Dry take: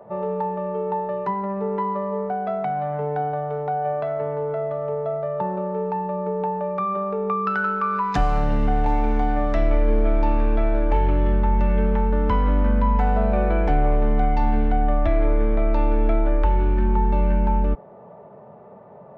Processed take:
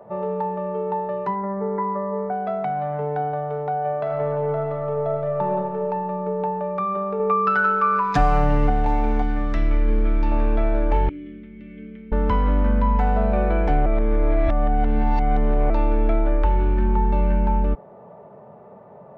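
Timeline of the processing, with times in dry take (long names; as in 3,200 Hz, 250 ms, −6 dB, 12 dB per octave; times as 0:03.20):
0:01.35–0:02.32: linear-phase brick-wall low-pass 2,300 Hz
0:03.96–0:05.46: thrown reverb, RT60 2.7 s, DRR 0.5 dB
0:07.19–0:08.70: comb filter 6.8 ms, depth 66%
0:09.22–0:10.32: parametric band 660 Hz −11.5 dB 0.87 octaves
0:11.09–0:12.12: formant filter i
0:13.86–0:15.70: reverse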